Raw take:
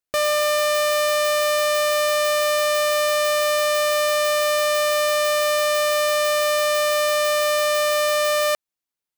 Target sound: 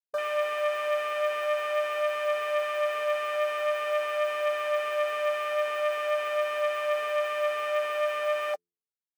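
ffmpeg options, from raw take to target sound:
-af "asuperstop=centerf=880:order=4:qfactor=7.3,bandreject=f=86.91:t=h:w=4,bandreject=f=173.82:t=h:w=4,bandreject=f=260.73:t=h:w=4,bandreject=f=347.64:t=h:w=4,bandreject=f=434.55:t=h:w=4,flanger=delay=5.9:depth=6.8:regen=26:speed=0.46:shape=triangular,afwtdn=0.0501,volume=-4dB"

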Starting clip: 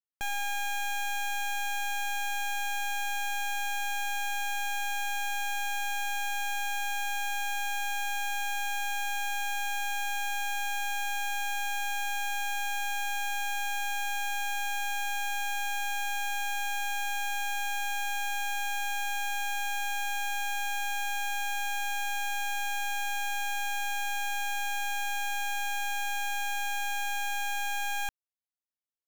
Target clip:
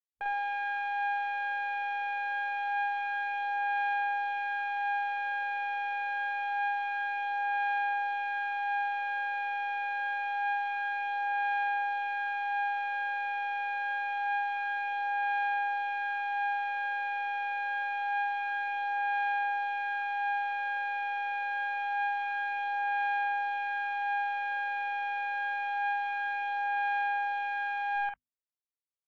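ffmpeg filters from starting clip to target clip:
-filter_complex "[0:a]crystalizer=i=5:c=0,acrossover=split=4100[a][b];[b]acompressor=threshold=-41dB:ratio=4:attack=1:release=60[c];[a][c]amix=inputs=2:normalize=0,highshelf=f=2.6k:g=-11.5,bandreject=f=50:t=h:w=6,bandreject=f=100:t=h:w=6,bandreject=f=150:t=h:w=6,bandreject=f=200:t=h:w=6,bandreject=f=250:t=h:w=6,afwtdn=0.00891,acrossover=split=240 2400:gain=0.1 1 0.112[d][e][f];[d][e][f]amix=inputs=3:normalize=0,aphaser=in_gain=1:out_gain=1:delay=2.1:decay=0.27:speed=0.26:type=sinusoidal,asplit=2[g][h];[h]aecho=0:1:10|48:0.282|0.668[i];[g][i]amix=inputs=2:normalize=0,volume=-2dB" -ar 48000 -c:a libvorbis -b:a 128k

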